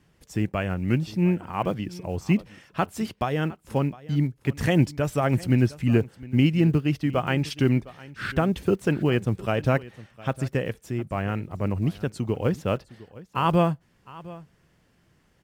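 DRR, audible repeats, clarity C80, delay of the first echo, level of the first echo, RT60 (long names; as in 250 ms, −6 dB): no reverb audible, 1, no reverb audible, 709 ms, −19.5 dB, no reverb audible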